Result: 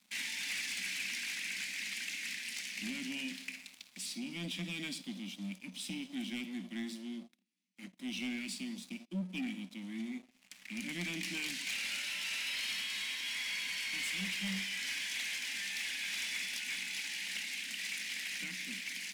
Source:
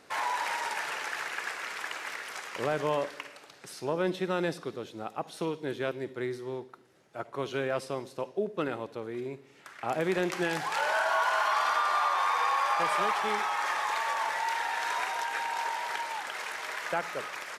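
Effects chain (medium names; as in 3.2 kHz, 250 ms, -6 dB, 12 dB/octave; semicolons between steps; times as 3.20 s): elliptic band-stop 250–2500 Hz, stop band 40 dB; waveshaping leveller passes 2; speed mistake 48 kHz file played as 44.1 kHz; rippled Chebyshev high-pass 180 Hz, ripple 3 dB; on a send at -16 dB: reverberation RT60 0.40 s, pre-delay 6 ms; on the sum: waveshaping leveller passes 2; trim -7 dB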